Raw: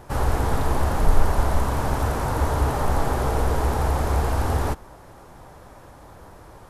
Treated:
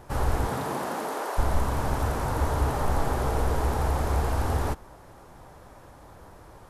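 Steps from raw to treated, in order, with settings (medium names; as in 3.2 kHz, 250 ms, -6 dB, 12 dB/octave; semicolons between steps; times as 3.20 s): 0.46–1.37 s: high-pass 96 Hz -> 410 Hz 24 dB/octave; trim -3.5 dB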